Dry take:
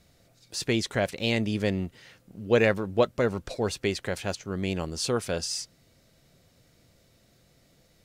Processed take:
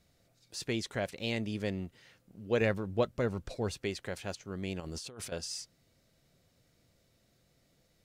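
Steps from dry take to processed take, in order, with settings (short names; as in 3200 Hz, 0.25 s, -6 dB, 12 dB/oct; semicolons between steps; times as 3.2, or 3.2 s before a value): 2.61–3.77 low shelf 170 Hz +7.5 dB; 4.8–5.32 negative-ratio compressor -36 dBFS, ratio -1; gain -8 dB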